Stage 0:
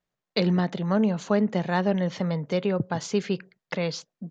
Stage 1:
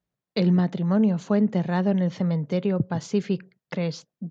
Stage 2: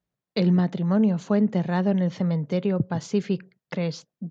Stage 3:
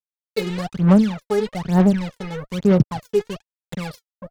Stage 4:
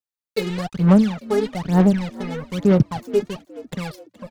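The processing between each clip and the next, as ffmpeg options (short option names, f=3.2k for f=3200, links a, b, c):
-af "highpass=45,lowshelf=f=330:g=10.5,volume=-4.5dB"
-af anull
-af "acrusher=bits=4:mix=0:aa=0.5,aphaser=in_gain=1:out_gain=1:delay=2.4:decay=0.8:speed=1.1:type=sinusoidal,volume=-3.5dB"
-filter_complex "[0:a]asplit=4[a][b][c][d];[b]adelay=421,afreqshift=55,volume=-19dB[e];[c]adelay=842,afreqshift=110,volume=-26.7dB[f];[d]adelay=1263,afreqshift=165,volume=-34.5dB[g];[a][e][f][g]amix=inputs=4:normalize=0"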